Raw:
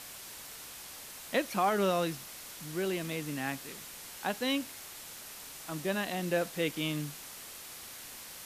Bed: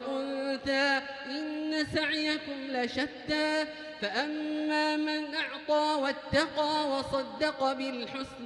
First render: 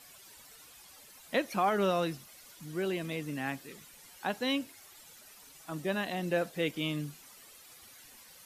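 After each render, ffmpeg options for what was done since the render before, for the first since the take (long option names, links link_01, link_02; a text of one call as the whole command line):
ffmpeg -i in.wav -af "afftdn=noise_reduction=12:noise_floor=-47" out.wav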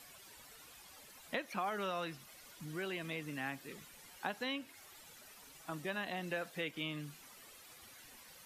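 ffmpeg -i in.wav -filter_complex "[0:a]acrossover=split=860|3400[link_01][link_02][link_03];[link_01]acompressor=threshold=-43dB:ratio=4[link_04];[link_02]acompressor=threshold=-39dB:ratio=4[link_05];[link_03]acompressor=threshold=-57dB:ratio=4[link_06];[link_04][link_05][link_06]amix=inputs=3:normalize=0" out.wav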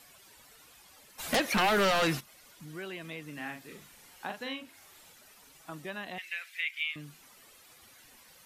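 ffmpeg -i in.wav -filter_complex "[0:a]asplit=3[link_01][link_02][link_03];[link_01]afade=type=out:start_time=1.18:duration=0.02[link_04];[link_02]aeval=exprs='0.0794*sin(PI/2*5.01*val(0)/0.0794)':channel_layout=same,afade=type=in:start_time=1.18:duration=0.02,afade=type=out:start_time=2.19:duration=0.02[link_05];[link_03]afade=type=in:start_time=2.19:duration=0.02[link_06];[link_04][link_05][link_06]amix=inputs=3:normalize=0,asettb=1/sr,asplit=3[link_07][link_08][link_09];[link_07]atrim=end=3.334[link_10];[link_08]atrim=start=3.33:end=5.12,asetpts=PTS-STARTPTS,afade=type=in:duration=0.004:curve=qsin,afade=type=out:start_time=1.786:duration=0.004:curve=qsin,asplit=2[link_11][link_12];[link_12]adelay=41,volume=-5dB[link_13];[link_11][link_13]amix=inputs=2:normalize=0,atrim=end_sample=78939[link_14];[link_09]atrim=start=5.116[link_15];[link_10][link_14]acrossfade=duration=0.004:curve1=hsin:curve2=qsin[link_16];[link_16][link_15]acrossfade=duration=0.004:curve1=qsin:curve2=hsin,asettb=1/sr,asplit=3[link_17][link_18][link_19];[link_17]atrim=end=6.184[link_20];[link_18]atrim=start=6.18:end=6.96,asetpts=PTS-STARTPTS,afade=type=in:duration=0.004:curve=qsin,afade=type=out:start_time=0.776:duration=0.004:curve=qsin,highpass=frequency=2200:width_type=q:width=4.4[link_21];[link_19]atrim=start=6.956[link_22];[link_20][link_21]acrossfade=duration=0.004:curve1=hsin:curve2=qsin[link_23];[link_23][link_22]acrossfade=duration=0.004:curve1=qsin:curve2=hsin" out.wav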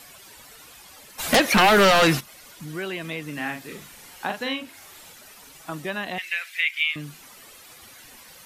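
ffmpeg -i in.wav -af "volume=10dB" out.wav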